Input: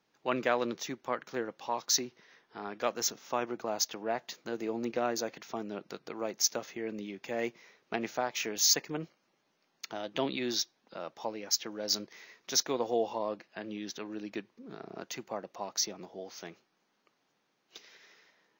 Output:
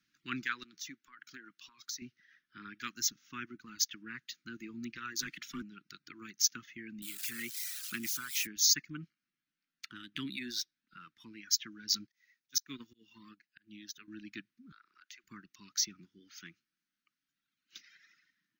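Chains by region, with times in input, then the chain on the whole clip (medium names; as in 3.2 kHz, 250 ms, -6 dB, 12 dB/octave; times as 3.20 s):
0.63–2.02 s: high-pass 320 Hz 6 dB/octave + compression 12:1, threshold -36 dBFS
5.19–5.62 s: frequency shift +23 Hz + band-stop 820 Hz, Q 7.7 + waveshaping leveller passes 2
7.02–8.47 s: zero-crossing glitches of -27.5 dBFS + high-pass 99 Hz
9.00–11.40 s: median filter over 5 samples + treble shelf 8.1 kHz -5.5 dB
12.07–14.08 s: treble shelf 8 kHz +11.5 dB + slow attack 152 ms + upward expansion, over -47 dBFS
14.72–15.24 s: high-pass 730 Hz + treble shelf 7.1 kHz -10 dB + compression, threshold -47 dBFS
whole clip: peaking EQ 350 Hz -4 dB 1.6 oct; reverb removal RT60 2 s; Chebyshev band-stop 300–1400 Hz, order 3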